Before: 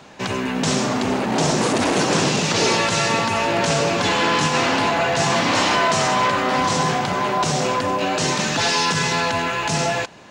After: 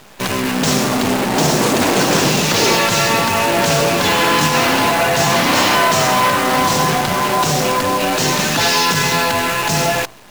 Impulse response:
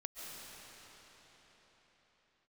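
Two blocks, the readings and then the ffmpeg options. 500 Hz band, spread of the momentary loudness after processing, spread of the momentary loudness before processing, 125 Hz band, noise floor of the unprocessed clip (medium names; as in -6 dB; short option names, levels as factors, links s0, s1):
+4.0 dB, 4 LU, 4 LU, +4.0 dB, -25 dBFS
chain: -af "bandreject=f=55.34:t=h:w=4,bandreject=f=110.68:t=h:w=4,bandreject=f=166.02:t=h:w=4,bandreject=f=221.36:t=h:w=4,bandreject=f=276.7:t=h:w=4,bandreject=f=332.04:t=h:w=4,bandreject=f=387.38:t=h:w=4,bandreject=f=442.72:t=h:w=4,bandreject=f=498.06:t=h:w=4,bandreject=f=553.4:t=h:w=4,bandreject=f=608.74:t=h:w=4,bandreject=f=664.08:t=h:w=4,bandreject=f=719.42:t=h:w=4,bandreject=f=774.76:t=h:w=4,bandreject=f=830.1:t=h:w=4,bandreject=f=885.44:t=h:w=4,bandreject=f=940.78:t=h:w=4,bandreject=f=996.12:t=h:w=4,bandreject=f=1051.46:t=h:w=4,bandreject=f=1106.8:t=h:w=4,bandreject=f=1162.14:t=h:w=4,bandreject=f=1217.48:t=h:w=4,bandreject=f=1272.82:t=h:w=4,bandreject=f=1328.16:t=h:w=4,acrusher=bits=5:dc=4:mix=0:aa=0.000001,volume=1.68"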